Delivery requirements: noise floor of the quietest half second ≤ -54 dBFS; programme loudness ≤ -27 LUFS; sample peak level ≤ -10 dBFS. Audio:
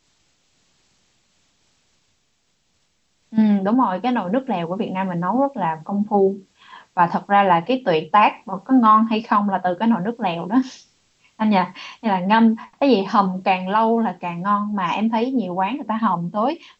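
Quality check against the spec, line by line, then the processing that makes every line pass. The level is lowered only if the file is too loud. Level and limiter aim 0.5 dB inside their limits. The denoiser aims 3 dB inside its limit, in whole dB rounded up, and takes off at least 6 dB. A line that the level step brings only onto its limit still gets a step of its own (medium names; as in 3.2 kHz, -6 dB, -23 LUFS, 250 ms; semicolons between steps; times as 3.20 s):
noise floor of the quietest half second -66 dBFS: pass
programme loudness -19.5 LUFS: fail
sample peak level -3.0 dBFS: fail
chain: trim -8 dB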